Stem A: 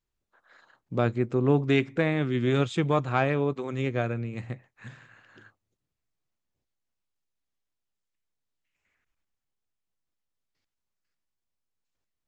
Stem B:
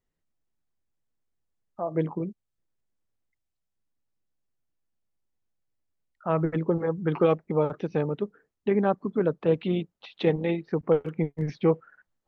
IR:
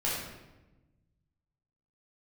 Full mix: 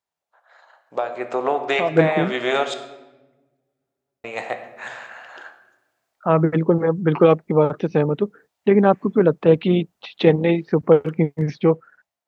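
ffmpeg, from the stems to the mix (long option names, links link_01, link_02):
-filter_complex "[0:a]highpass=frequency=700:width_type=q:width=3.8,acompressor=threshold=-28dB:ratio=6,volume=-1.5dB,asplit=3[link_01][link_02][link_03];[link_01]atrim=end=2.74,asetpts=PTS-STARTPTS,afade=type=out:start_time=2.736:duration=0.004:curve=hsin[link_04];[link_02]atrim=start=2.74:end=4.24,asetpts=PTS-STARTPTS,volume=0[link_05];[link_03]atrim=start=4.24,asetpts=PTS-STARTPTS,afade=type=in:duration=0.004:curve=hsin[link_06];[link_04][link_05][link_06]concat=n=3:v=0:a=1,asplit=2[link_07][link_08];[link_08]volume=-13.5dB[link_09];[1:a]highpass=80,agate=range=-9dB:threshold=-54dB:ratio=16:detection=peak,volume=-3dB[link_10];[2:a]atrim=start_sample=2205[link_11];[link_09][link_11]afir=irnorm=-1:irlink=0[link_12];[link_07][link_10][link_12]amix=inputs=3:normalize=0,dynaudnorm=framelen=290:gausssize=7:maxgain=14dB"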